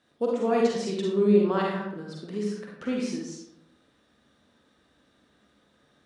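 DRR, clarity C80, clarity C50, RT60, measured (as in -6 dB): -2.5 dB, 4.5 dB, 0.5 dB, 0.75 s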